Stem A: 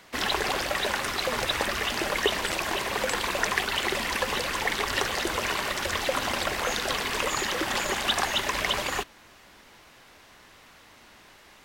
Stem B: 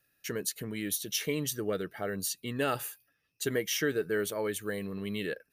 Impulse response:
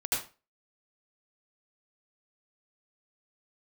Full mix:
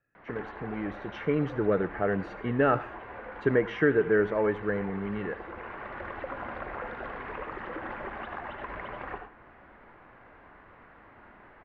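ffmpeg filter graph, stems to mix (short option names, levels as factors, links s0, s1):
-filter_complex "[0:a]acompressor=threshold=0.0158:ratio=4,adelay=150,volume=0.891,asplit=2[s0][s1];[s1]volume=0.335[s2];[1:a]dynaudnorm=f=430:g=5:m=2.51,highshelf=f=6500:g=9,volume=0.841,asplit=3[s3][s4][s5];[s4]volume=0.0794[s6];[s5]apad=whole_len=520049[s7];[s0][s7]sidechaincompress=threshold=0.00891:ratio=8:attack=49:release=884[s8];[2:a]atrim=start_sample=2205[s9];[s2][s6]amix=inputs=2:normalize=0[s10];[s10][s9]afir=irnorm=-1:irlink=0[s11];[s8][s3][s11]amix=inputs=3:normalize=0,lowpass=f=1800:w=0.5412,lowpass=f=1800:w=1.3066"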